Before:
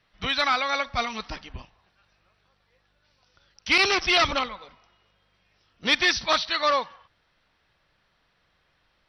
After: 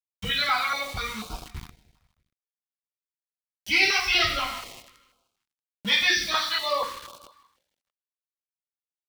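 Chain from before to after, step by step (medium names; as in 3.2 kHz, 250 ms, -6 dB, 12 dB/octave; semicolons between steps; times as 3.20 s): expander on every frequency bin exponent 1.5; peaking EQ 360 Hz -2.5 dB 2.2 oct; hum notches 60/120/180/240/300/360/420/480/540/600 Hz; two-slope reverb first 0.5 s, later 2.5 s, from -22 dB, DRR -7 dB; in parallel at +3 dB: compression, threshold -31 dBFS, peak gain reduction 19.5 dB; on the sum: small samples zeroed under -29 dBFS; on a send: feedback delay 158 ms, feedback 53%, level -20 dB; on the sum: step-sequenced notch 4.1 Hz 340–1900 Hz; trim -6 dB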